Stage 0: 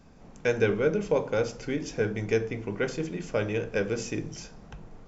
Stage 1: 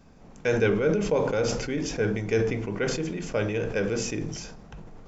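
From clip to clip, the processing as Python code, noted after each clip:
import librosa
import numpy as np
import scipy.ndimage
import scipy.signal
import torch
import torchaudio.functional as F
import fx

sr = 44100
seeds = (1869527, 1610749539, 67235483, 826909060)

y = fx.sustainer(x, sr, db_per_s=41.0)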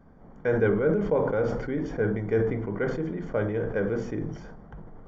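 y = scipy.signal.savgol_filter(x, 41, 4, mode='constant')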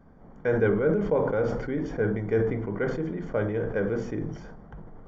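y = x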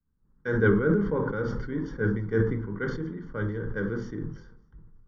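y = fx.fixed_phaser(x, sr, hz=2500.0, stages=6)
y = y + 10.0 ** (-20.5 / 20.0) * np.pad(y, (int(603 * sr / 1000.0), 0))[:len(y)]
y = fx.band_widen(y, sr, depth_pct=100)
y = y * 10.0 ** (2.0 / 20.0)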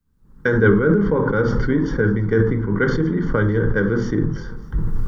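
y = fx.recorder_agc(x, sr, target_db=-16.5, rise_db_per_s=30.0, max_gain_db=30)
y = y * 10.0 ** (7.0 / 20.0)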